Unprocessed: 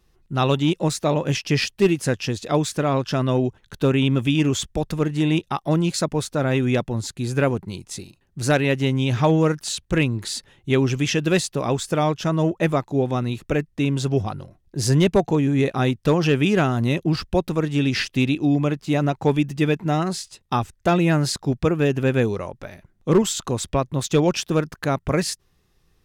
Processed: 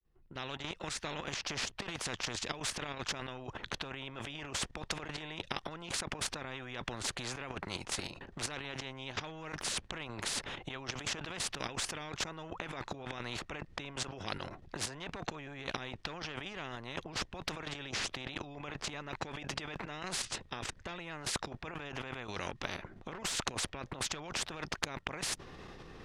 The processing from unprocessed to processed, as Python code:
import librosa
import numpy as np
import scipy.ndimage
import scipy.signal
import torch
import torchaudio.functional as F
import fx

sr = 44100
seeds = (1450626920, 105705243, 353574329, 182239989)

y = fx.fade_in_head(x, sr, length_s=3.83)
y = fx.level_steps(y, sr, step_db=11)
y = fx.spacing_loss(y, sr, db_at_10k=25)
y = fx.over_compress(y, sr, threshold_db=-36.0, ratio=-1.0)
y = fx.spectral_comp(y, sr, ratio=4.0)
y = F.gain(torch.from_numpy(y), 1.0).numpy()